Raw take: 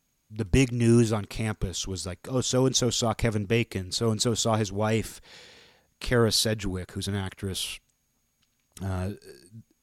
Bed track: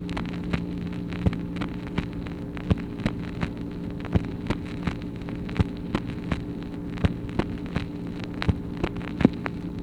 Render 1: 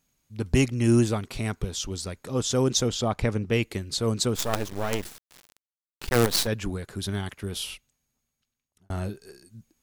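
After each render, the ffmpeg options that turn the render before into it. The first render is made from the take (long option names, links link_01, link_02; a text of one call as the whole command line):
ffmpeg -i in.wav -filter_complex "[0:a]asettb=1/sr,asplit=3[link_01][link_02][link_03];[link_01]atrim=end=2.884[link_04];[link_02]atrim=start=2.88:end=3.53,asetpts=PTS-STARTPTS,afade=type=in:duration=0.004:curve=qsin,afade=type=out:start_time=0.646:duration=0.004:curve=qsin,aemphasis=mode=reproduction:type=cd[link_05];[link_03]atrim=start=3.526[link_06];[link_04][link_05]acrossfade=duration=0.004:curve1=hsin:curve2=qsin[link_07];[link_07][link_06]acrossfade=duration=0.004:curve1=qsin:curve2=hsin,asplit=3[link_08][link_09][link_10];[link_08]afade=type=out:start_time=4.34:duration=0.02[link_11];[link_09]acrusher=bits=4:dc=4:mix=0:aa=0.000001,afade=type=in:start_time=4.34:duration=0.02,afade=type=out:start_time=6.46:duration=0.02[link_12];[link_10]afade=type=in:start_time=6.46:duration=0.02[link_13];[link_11][link_12][link_13]amix=inputs=3:normalize=0,asplit=2[link_14][link_15];[link_14]atrim=end=8.9,asetpts=PTS-STARTPTS,afade=type=out:start_time=7.34:duration=1.56[link_16];[link_15]atrim=start=8.9,asetpts=PTS-STARTPTS,afade=type=in:duration=0.004:curve=hsin[link_17];[link_16][link_17]concat=n=2:v=0:a=1" out.wav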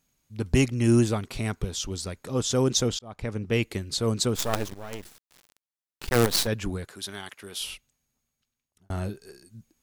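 ffmpeg -i in.wav -filter_complex "[0:a]asettb=1/sr,asplit=3[link_01][link_02][link_03];[link_01]atrim=end=6.884[link_04];[link_02]atrim=start=6.88:end=7.61,asetpts=PTS-STARTPTS,afade=type=in:duration=0.004:curve=qsin,afade=type=out:start_time=0.726:duration=0.004:curve=qsin,highpass=frequency=790:poles=1[link_05];[link_03]atrim=start=7.606[link_06];[link_04][link_05]acrossfade=duration=0.004:curve1=hsin:curve2=qsin[link_07];[link_07][link_06]acrossfade=duration=0.004:curve1=qsin:curve2=hsin,asplit=3[link_08][link_09][link_10];[link_08]atrim=end=2.99,asetpts=PTS-STARTPTS,afade=type=out:start_time=2.986:duration=0.004:curve=hsin[link_11];[link_09]atrim=start=2.99:end=4.74,asetpts=PTS-STARTPTS,afade=type=in:duration=0.6,afade=type=out:start_time=1.746:duration=0.004:curve=hsin:silence=0.237137[link_12];[link_10]atrim=start=4.74,asetpts=PTS-STARTPTS,afade=type=in:duration=1.47:silence=0.237137[link_13];[link_11][link_12][link_13]concat=n=3:v=0:a=1" out.wav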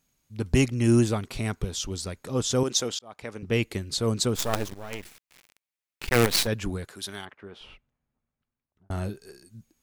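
ffmpeg -i in.wav -filter_complex "[0:a]asettb=1/sr,asplit=3[link_01][link_02][link_03];[link_01]atrim=end=2.634[link_04];[link_02]atrim=start=2.63:end=3.43,asetpts=PTS-STARTPTS,afade=type=in:duration=0.004:curve=qsin,afade=type=out:start_time=0.796:duration=0.004:curve=qsin,highpass=frequency=510:poles=1[link_05];[link_03]atrim=start=3.426[link_06];[link_04][link_05]acrossfade=duration=0.004:curve1=hsin:curve2=qsin[link_07];[link_07][link_06]acrossfade=duration=0.004:curve1=qsin:curve2=hsin,asettb=1/sr,asplit=3[link_08][link_09][link_10];[link_08]atrim=end=4.904[link_11];[link_09]atrim=start=4.9:end=6.43,asetpts=PTS-STARTPTS,afade=type=in:duration=0.004:curve=qsin,afade=type=out:start_time=1.526:duration=0.004:curve=qsin,equalizer=frequency=2300:width=2.1:gain=7.5[link_12];[link_10]atrim=start=6.426[link_13];[link_11][link_12]acrossfade=duration=0.004:curve1=hsin:curve2=qsin[link_14];[link_14][link_13]acrossfade=duration=0.004:curve1=qsin:curve2=hsin,asettb=1/sr,asplit=3[link_15][link_16][link_17];[link_15]atrim=end=7.254[link_18];[link_16]atrim=start=7.25:end=8.91,asetpts=PTS-STARTPTS,afade=type=in:duration=0.004:curve=qsin,afade=type=out:start_time=1.656:duration=0.004:curve=qsin,lowpass=1500[link_19];[link_17]atrim=start=8.906[link_20];[link_18][link_19]acrossfade=duration=0.004:curve1=hsin:curve2=qsin[link_21];[link_21][link_20]acrossfade=duration=0.004:curve1=qsin:curve2=hsin" out.wav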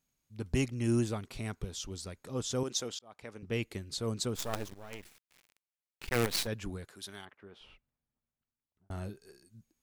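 ffmpeg -i in.wav -af "volume=-9dB" out.wav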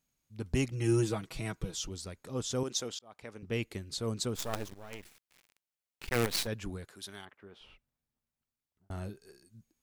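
ffmpeg -i in.wav -filter_complex "[0:a]asettb=1/sr,asplit=3[link_01][link_02][link_03];[link_01]atrim=end=0.704[link_04];[link_02]atrim=start=0.7:end=1.89,asetpts=PTS-STARTPTS,afade=type=in:duration=0.004:curve=qsin,afade=type=out:start_time=1.186:duration=0.004:curve=qsin,aecho=1:1:6.2:0.9,atrim=end_sample=52479[link_05];[link_03]atrim=start=1.886[link_06];[link_04][link_05]acrossfade=duration=0.004:curve1=hsin:curve2=qsin[link_07];[link_07][link_06]acrossfade=duration=0.004:curve1=qsin:curve2=hsin" out.wav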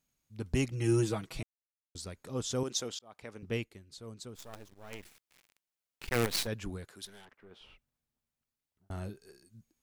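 ffmpeg -i in.wav -filter_complex "[0:a]asettb=1/sr,asplit=3[link_01][link_02][link_03];[link_01]atrim=end=7.054[link_04];[link_02]atrim=start=7.05:end=7.51,asetpts=PTS-STARTPTS,afade=type=in:duration=0.004:curve=qsin,afade=type=out:start_time=0.456:duration=0.004:curve=qsin,aeval=exprs='(tanh(282*val(0)+0.4)-tanh(0.4))/282':channel_layout=same[link_05];[link_03]atrim=start=7.506[link_06];[link_04][link_05]acrossfade=duration=0.004:curve1=hsin:curve2=qsin[link_07];[link_07][link_06]acrossfade=duration=0.004:curve1=qsin:curve2=hsin,asplit=5[link_08][link_09][link_10][link_11][link_12];[link_08]atrim=end=1.43,asetpts=PTS-STARTPTS,afade=type=out:start_time=1.426:duration=0.004:curve=hsin[link_13];[link_09]atrim=start=1.43:end=1.95,asetpts=PTS-STARTPTS,volume=0[link_14];[link_10]atrim=start=1.95:end=3.7,asetpts=PTS-STARTPTS,afade=type=in:duration=0.004:curve=hsin,afade=type=out:start_time=1.6:duration=0.15:silence=0.251189[link_15];[link_11]atrim=start=3.7:end=4.73,asetpts=PTS-STARTPTS,volume=-12dB[link_16];[link_12]atrim=start=4.73,asetpts=PTS-STARTPTS,afade=type=in:duration=0.15:silence=0.251189[link_17];[link_13][link_14][link_15][link_16][link_17]concat=n=5:v=0:a=1" out.wav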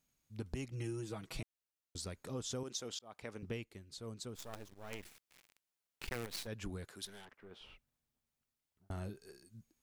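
ffmpeg -i in.wav -af "acompressor=threshold=-38dB:ratio=10" out.wav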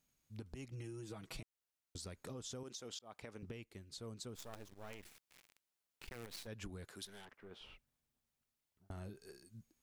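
ffmpeg -i in.wav -af "alimiter=level_in=10dB:limit=-24dB:level=0:latency=1:release=291,volume=-10dB,acompressor=threshold=-44dB:ratio=6" out.wav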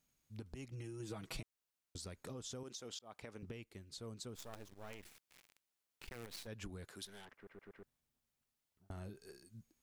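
ffmpeg -i in.wav -filter_complex "[0:a]asplit=7[link_01][link_02][link_03][link_04][link_05][link_06][link_07];[link_01]atrim=end=1.002[link_08];[link_02]atrim=start=0.998:end=1.422,asetpts=PTS-STARTPTS,volume=3dB[link_09];[link_03]atrim=start=1.418:end=7.472[link_10];[link_04]atrim=start=7.348:end=7.472[link_11];[link_05]atrim=start=7.348:end=7.472[link_12];[link_06]atrim=start=7.348:end=7.472[link_13];[link_07]atrim=start=7.828[link_14];[link_08][link_09]acrossfade=duration=0.004:curve1=hsin:curve2=hsin[link_15];[link_15][link_10]acrossfade=duration=0.004:curve1=hsin:curve2=hsin[link_16];[link_16][link_11]acrossfade=duration=0.004:curve1=hsin:curve2=hsin[link_17];[link_17][link_12]acrossfade=duration=0.004:curve1=hsin:curve2=hsin[link_18];[link_18][link_13]acrossfade=duration=0.004:curve1=hsin:curve2=hsin[link_19];[link_19][link_14]acrossfade=duration=0.004:curve1=hsin:curve2=hsin" out.wav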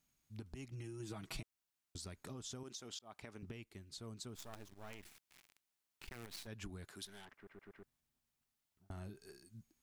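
ffmpeg -i in.wav -af "equalizer=frequency=500:width_type=o:width=0.24:gain=-9.5" out.wav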